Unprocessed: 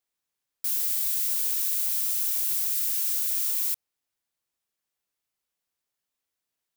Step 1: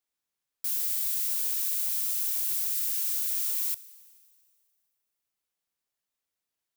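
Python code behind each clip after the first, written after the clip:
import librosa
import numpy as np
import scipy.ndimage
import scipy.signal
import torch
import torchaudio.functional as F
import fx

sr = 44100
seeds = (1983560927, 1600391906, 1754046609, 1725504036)

y = fx.rev_schroeder(x, sr, rt60_s=2.1, comb_ms=29, drr_db=17.5)
y = F.gain(torch.from_numpy(y), -2.5).numpy()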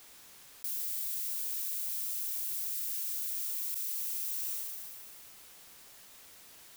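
y = fx.env_flatten(x, sr, amount_pct=100)
y = F.gain(torch.from_numpy(y), -7.5).numpy()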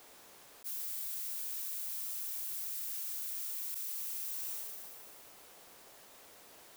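y = fx.peak_eq(x, sr, hz=550.0, db=10.5, octaves=2.5)
y = fx.attack_slew(y, sr, db_per_s=570.0)
y = F.gain(torch.from_numpy(y), -4.0).numpy()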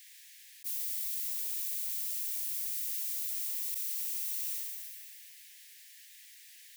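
y = scipy.signal.sosfilt(scipy.signal.butter(16, 1700.0, 'highpass', fs=sr, output='sos'), x)
y = F.gain(torch.from_numpy(y), 4.0).numpy()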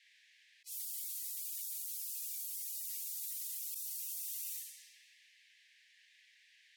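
y = fx.spec_gate(x, sr, threshold_db=-20, keep='strong')
y = fx.env_lowpass(y, sr, base_hz=2400.0, full_db=-32.5)
y = F.gain(torch.from_numpy(y), -2.5).numpy()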